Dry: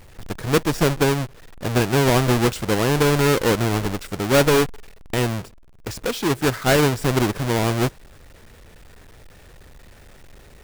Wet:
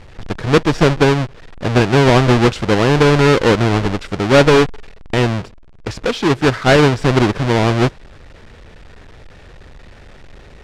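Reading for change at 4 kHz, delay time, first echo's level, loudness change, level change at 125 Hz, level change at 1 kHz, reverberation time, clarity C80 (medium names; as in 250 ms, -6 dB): +5.0 dB, no echo, no echo, +6.0 dB, +6.5 dB, +6.5 dB, no reverb, no reverb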